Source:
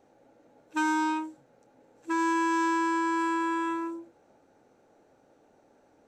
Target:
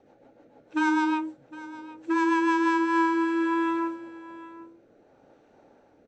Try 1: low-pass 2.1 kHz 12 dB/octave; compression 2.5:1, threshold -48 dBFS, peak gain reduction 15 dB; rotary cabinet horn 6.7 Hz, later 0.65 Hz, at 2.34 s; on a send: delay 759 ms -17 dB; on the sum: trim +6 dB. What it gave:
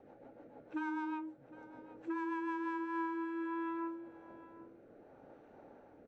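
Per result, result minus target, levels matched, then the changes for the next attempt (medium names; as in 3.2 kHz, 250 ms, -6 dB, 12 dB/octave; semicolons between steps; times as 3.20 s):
compression: peak gain reduction +15 dB; 4 kHz band -7.5 dB
remove: compression 2.5:1, threshold -48 dBFS, peak gain reduction 15 dB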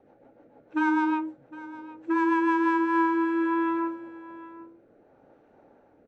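4 kHz band -7.5 dB
change: low-pass 4.4 kHz 12 dB/octave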